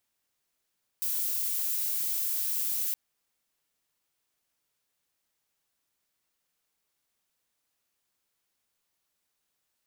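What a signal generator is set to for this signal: noise violet, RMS -30 dBFS 1.92 s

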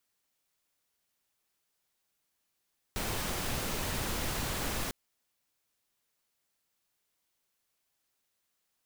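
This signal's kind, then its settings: noise pink, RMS -34 dBFS 1.95 s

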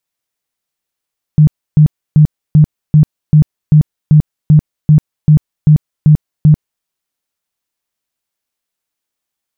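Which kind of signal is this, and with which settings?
tone bursts 152 Hz, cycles 14, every 0.39 s, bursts 14, -2 dBFS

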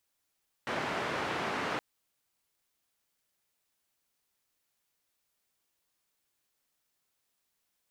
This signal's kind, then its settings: noise band 140–1600 Hz, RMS -34 dBFS 1.12 s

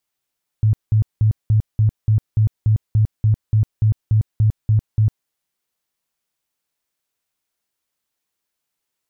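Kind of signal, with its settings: tone bursts 108 Hz, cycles 11, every 0.29 s, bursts 16, -11 dBFS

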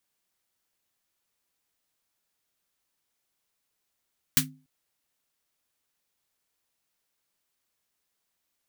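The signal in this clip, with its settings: snare drum length 0.29 s, tones 150 Hz, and 260 Hz, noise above 1400 Hz, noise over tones 11 dB, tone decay 0.38 s, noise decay 0.13 s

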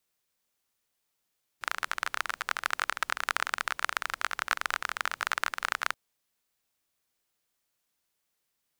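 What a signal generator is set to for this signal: rain from filtered ticks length 4.33 s, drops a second 26, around 1400 Hz, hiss -27 dB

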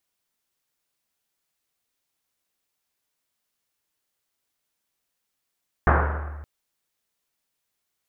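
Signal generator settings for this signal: Risset drum length 0.57 s, pitch 74 Hz, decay 1.90 s, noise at 960 Hz, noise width 1400 Hz, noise 45%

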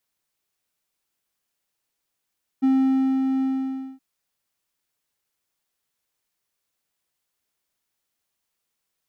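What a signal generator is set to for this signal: ADSR triangle 265 Hz, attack 20 ms, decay 0.575 s, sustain -4.5 dB, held 0.80 s, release 0.571 s -13 dBFS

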